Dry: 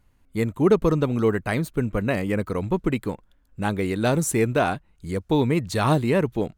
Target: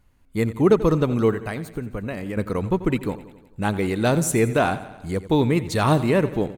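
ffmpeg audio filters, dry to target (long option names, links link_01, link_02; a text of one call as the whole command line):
ffmpeg -i in.wav -filter_complex "[0:a]asettb=1/sr,asplit=3[link_01][link_02][link_03];[link_01]atrim=end=1.314[link_04];[link_02]atrim=start=1.31:end=2.37,asetpts=PTS-STARTPTS,afade=type=in:duration=0.004:curve=qsin,afade=type=out:start_time=1.056:duration=0.004:curve=qsin,acompressor=threshold=-28dB:ratio=6[link_05];[link_03]atrim=start=2.366[link_06];[link_04][link_05]acrossfade=duration=0.004:curve1=hsin:curve2=qsin[link_07];[link_07][link_06]acrossfade=duration=0.004:curve1=qsin:curve2=hsin,aecho=1:1:88|176|264|352|440|528:0.168|0.101|0.0604|0.0363|0.0218|0.0131,volume=1.5dB" out.wav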